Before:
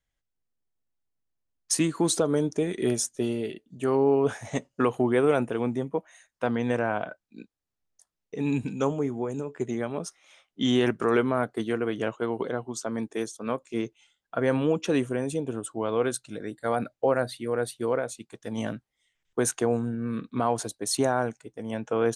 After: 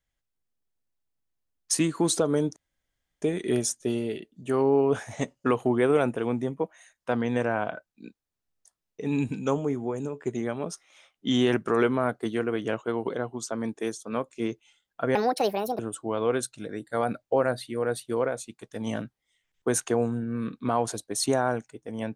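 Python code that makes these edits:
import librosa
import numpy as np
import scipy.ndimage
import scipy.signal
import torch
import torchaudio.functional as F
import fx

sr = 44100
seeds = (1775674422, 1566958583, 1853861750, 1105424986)

y = fx.edit(x, sr, fx.insert_room_tone(at_s=2.56, length_s=0.66),
    fx.speed_span(start_s=14.49, length_s=1.01, speed=1.58), tone=tone)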